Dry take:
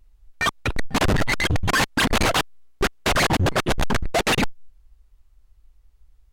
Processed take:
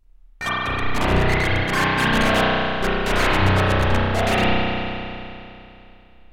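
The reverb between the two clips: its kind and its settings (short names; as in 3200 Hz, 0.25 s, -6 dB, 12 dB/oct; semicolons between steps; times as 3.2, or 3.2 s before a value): spring tank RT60 2.8 s, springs 32 ms, chirp 70 ms, DRR -9 dB; gain -6.5 dB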